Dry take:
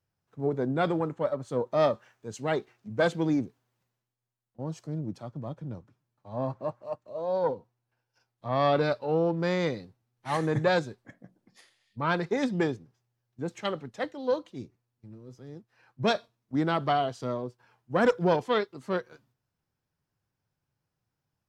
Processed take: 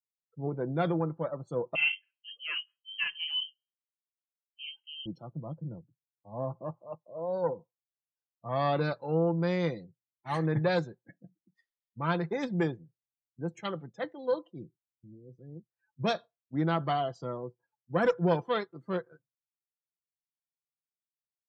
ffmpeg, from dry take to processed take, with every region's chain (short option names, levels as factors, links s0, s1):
-filter_complex "[0:a]asettb=1/sr,asplit=3[s0][s1][s2];[s0]atrim=end=1.754[s3];[s1]atrim=start=1.75:end=5.06,asetpts=PTS-STARTPTS,afade=t=in:d=0.004:c=qsin,afade=t=out:st=3.306:d=0.004:c=qsin,flanger=delay=17.5:depth=6.7:speed=2.1,lowpass=f=2800:t=q:w=0.5098,lowpass=f=2800:t=q:w=0.6013,lowpass=f=2800:t=q:w=0.9,lowpass=f=2800:t=q:w=2.563,afreqshift=-3300[s4];[s2]atrim=start=5.056[s5];[s3][s4]acrossfade=d=0.004:c1=hsin:c2=qsin[s6];[s6][s5]acrossfade=d=0.004:c1=qsin:c2=hsin,afftdn=nr=31:nf=-48,equalizer=f=160:w=5.4:g=4.5,aecho=1:1:5.9:0.38,volume=0.596"